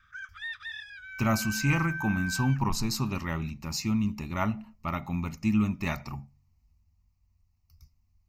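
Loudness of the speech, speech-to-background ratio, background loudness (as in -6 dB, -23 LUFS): -29.5 LUFS, 7.0 dB, -36.5 LUFS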